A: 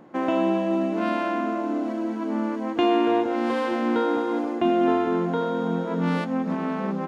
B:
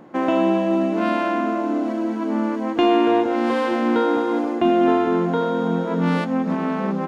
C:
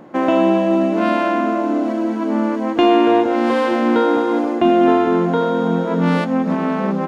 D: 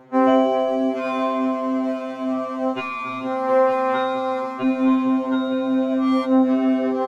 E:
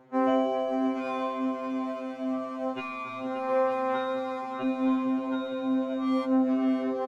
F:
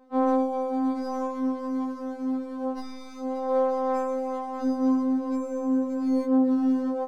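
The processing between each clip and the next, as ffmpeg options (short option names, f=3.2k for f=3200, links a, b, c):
-af "acontrast=29,volume=-1dB"
-af "equalizer=f=590:w=5.8:g=3,volume=3.5dB"
-af "aecho=1:1:913:0.237,afftfilt=real='re*2.45*eq(mod(b,6),0)':imag='im*2.45*eq(mod(b,6),0)':win_size=2048:overlap=0.75,volume=-2dB"
-af "aecho=1:1:579:0.335,volume=-8.5dB"
-filter_complex "[0:a]acrossover=split=240|310|1800[a][b][c][d];[d]aeval=exprs='abs(val(0))':c=same[e];[a][b][c][e]amix=inputs=4:normalize=0,afftfilt=real='re*3.46*eq(mod(b,12),0)':imag='im*3.46*eq(mod(b,12),0)':win_size=2048:overlap=0.75,volume=-5.5dB"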